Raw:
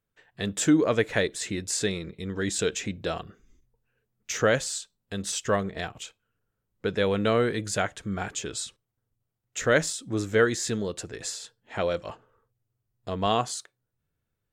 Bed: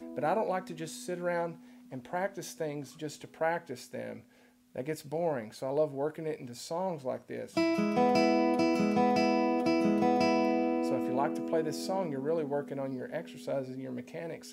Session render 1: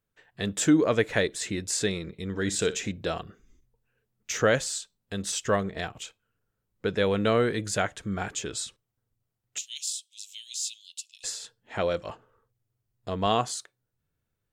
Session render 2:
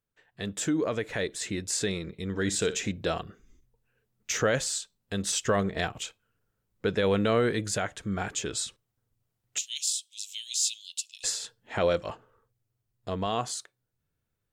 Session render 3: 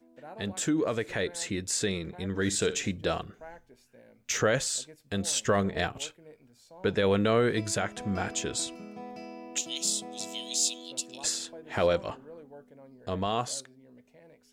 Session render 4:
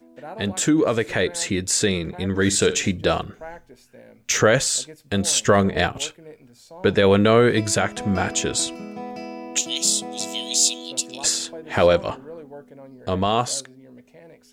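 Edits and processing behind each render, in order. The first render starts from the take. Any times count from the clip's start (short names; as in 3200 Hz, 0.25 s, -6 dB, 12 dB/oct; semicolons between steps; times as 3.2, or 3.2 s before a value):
2.24–2.92 flutter echo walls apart 10.5 m, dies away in 0.23 s; 9.58–11.24 steep high-pass 2700 Hz 72 dB/oct
limiter -16.5 dBFS, peak gain reduction 6.5 dB; vocal rider 2 s
add bed -16 dB
gain +9 dB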